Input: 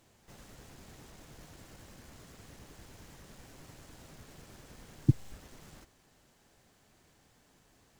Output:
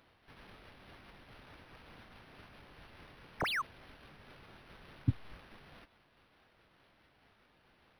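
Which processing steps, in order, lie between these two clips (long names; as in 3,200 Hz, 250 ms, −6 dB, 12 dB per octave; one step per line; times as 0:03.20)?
pitch shifter swept by a sawtooth −3.5 semitones, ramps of 374 ms
tilt shelving filter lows −4.5 dB
sound drawn into the spectrogram fall, 0:03.40–0:03.62, 970–10,000 Hz −32 dBFS
linearly interpolated sample-rate reduction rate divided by 6×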